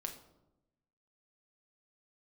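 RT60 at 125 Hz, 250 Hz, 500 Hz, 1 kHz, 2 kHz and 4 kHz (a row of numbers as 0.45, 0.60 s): 1.3, 1.2, 1.0, 0.85, 0.60, 0.50 s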